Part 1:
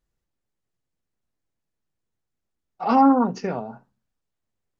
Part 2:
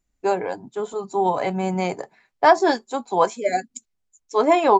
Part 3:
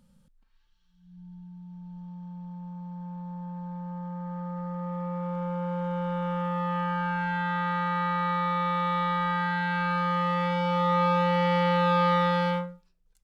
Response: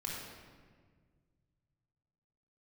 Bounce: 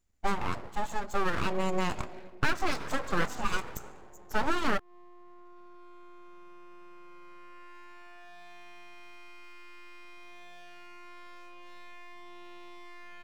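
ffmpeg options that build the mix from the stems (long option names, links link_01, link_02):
-filter_complex "[0:a]acompressor=threshold=-29dB:ratio=2,volume=-8dB,asplit=2[link_01][link_02];[link_02]volume=-9.5dB[link_03];[1:a]volume=-2dB,asplit=2[link_04][link_05];[link_05]volume=-15.5dB[link_06];[2:a]adelay=1000,volume=-12.5dB[link_07];[link_01][link_07]amix=inputs=2:normalize=0,acompressor=threshold=-47dB:ratio=3,volume=0dB[link_08];[3:a]atrim=start_sample=2205[link_09];[link_03][link_06]amix=inputs=2:normalize=0[link_10];[link_10][link_09]afir=irnorm=-1:irlink=0[link_11];[link_04][link_08][link_11]amix=inputs=3:normalize=0,aeval=exprs='abs(val(0))':channel_layout=same,acompressor=threshold=-22dB:ratio=6"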